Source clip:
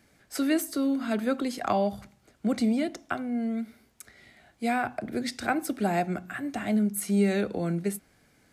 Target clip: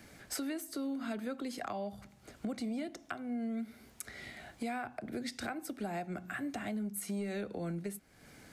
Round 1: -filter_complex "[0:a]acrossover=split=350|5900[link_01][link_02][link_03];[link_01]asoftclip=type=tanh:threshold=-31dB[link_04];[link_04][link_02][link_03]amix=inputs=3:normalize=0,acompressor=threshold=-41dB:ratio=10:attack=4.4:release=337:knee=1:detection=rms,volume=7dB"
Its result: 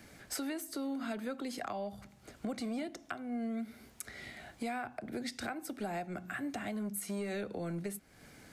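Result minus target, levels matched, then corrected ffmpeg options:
soft clipping: distortion +9 dB
-filter_complex "[0:a]acrossover=split=350|5900[link_01][link_02][link_03];[link_01]asoftclip=type=tanh:threshold=-22.5dB[link_04];[link_04][link_02][link_03]amix=inputs=3:normalize=0,acompressor=threshold=-41dB:ratio=10:attack=4.4:release=337:knee=1:detection=rms,volume=7dB"

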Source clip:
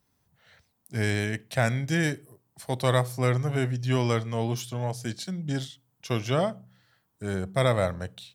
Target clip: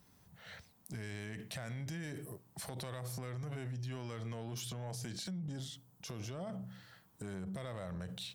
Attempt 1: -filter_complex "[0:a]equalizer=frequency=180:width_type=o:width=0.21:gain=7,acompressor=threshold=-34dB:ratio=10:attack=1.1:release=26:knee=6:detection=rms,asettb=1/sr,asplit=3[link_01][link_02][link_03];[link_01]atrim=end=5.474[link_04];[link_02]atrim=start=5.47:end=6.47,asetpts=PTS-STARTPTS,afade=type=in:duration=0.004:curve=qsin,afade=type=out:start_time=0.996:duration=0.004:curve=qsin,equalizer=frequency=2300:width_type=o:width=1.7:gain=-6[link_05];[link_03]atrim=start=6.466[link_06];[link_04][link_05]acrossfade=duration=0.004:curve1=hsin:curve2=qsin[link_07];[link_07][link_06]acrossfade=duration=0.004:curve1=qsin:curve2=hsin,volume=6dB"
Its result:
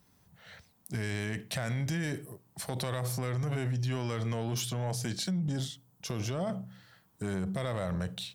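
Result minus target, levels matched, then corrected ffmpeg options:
downward compressor: peak gain reduction −10 dB
-filter_complex "[0:a]equalizer=frequency=180:width_type=o:width=0.21:gain=7,acompressor=threshold=-45dB:ratio=10:attack=1.1:release=26:knee=6:detection=rms,asettb=1/sr,asplit=3[link_01][link_02][link_03];[link_01]atrim=end=5.474[link_04];[link_02]atrim=start=5.47:end=6.47,asetpts=PTS-STARTPTS,afade=type=in:duration=0.004:curve=qsin,afade=type=out:start_time=0.996:duration=0.004:curve=qsin,equalizer=frequency=2300:width_type=o:width=1.7:gain=-6[link_05];[link_03]atrim=start=6.466[link_06];[link_04][link_05]acrossfade=duration=0.004:curve1=hsin:curve2=qsin[link_07];[link_07][link_06]acrossfade=duration=0.004:curve1=qsin:curve2=hsin,volume=6dB"

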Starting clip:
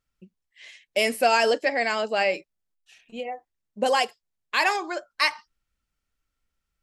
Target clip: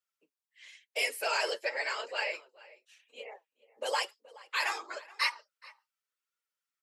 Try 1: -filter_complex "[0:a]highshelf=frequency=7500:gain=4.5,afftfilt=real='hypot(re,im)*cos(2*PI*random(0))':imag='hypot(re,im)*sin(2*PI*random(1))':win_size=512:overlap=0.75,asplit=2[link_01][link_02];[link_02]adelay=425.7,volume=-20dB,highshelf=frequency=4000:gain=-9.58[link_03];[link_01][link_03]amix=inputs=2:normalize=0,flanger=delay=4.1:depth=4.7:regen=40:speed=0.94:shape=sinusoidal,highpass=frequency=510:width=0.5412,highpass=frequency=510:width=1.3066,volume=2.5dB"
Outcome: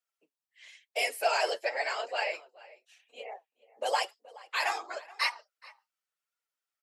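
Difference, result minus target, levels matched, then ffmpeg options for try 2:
1,000 Hz band +3.0 dB
-filter_complex "[0:a]highshelf=frequency=7500:gain=4.5,afftfilt=real='hypot(re,im)*cos(2*PI*random(0))':imag='hypot(re,im)*sin(2*PI*random(1))':win_size=512:overlap=0.75,asplit=2[link_01][link_02];[link_02]adelay=425.7,volume=-20dB,highshelf=frequency=4000:gain=-9.58[link_03];[link_01][link_03]amix=inputs=2:normalize=0,flanger=delay=4.1:depth=4.7:regen=40:speed=0.94:shape=sinusoidal,highpass=frequency=510:width=0.5412,highpass=frequency=510:width=1.3066,equalizer=frequency=720:width=4.7:gain=-12.5,volume=2.5dB"

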